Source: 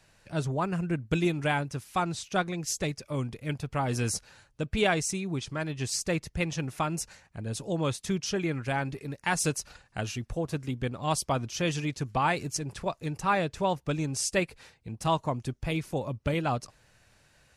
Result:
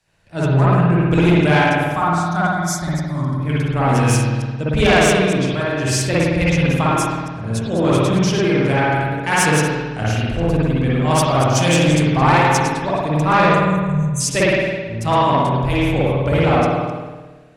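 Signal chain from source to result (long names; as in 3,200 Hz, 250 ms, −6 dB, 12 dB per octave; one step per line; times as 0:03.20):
delay that plays each chunk backwards 130 ms, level −8 dB
0:01.76–0:03.40: phaser with its sweep stopped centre 1,100 Hz, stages 4
0:11.55–0:12.07: parametric band 8,400 Hz +13.5 dB 0.91 octaves
0:13.48–0:14.21: gain on a spectral selection 210–6,000 Hz −29 dB
delay with a low-pass on its return 189 ms, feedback 57%, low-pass 540 Hz, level −12 dB
spring reverb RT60 1.5 s, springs 53 ms, chirp 55 ms, DRR −7 dB
harmonic generator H 5 −15 dB, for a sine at −6.5 dBFS
multiband upward and downward expander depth 40%
level +2 dB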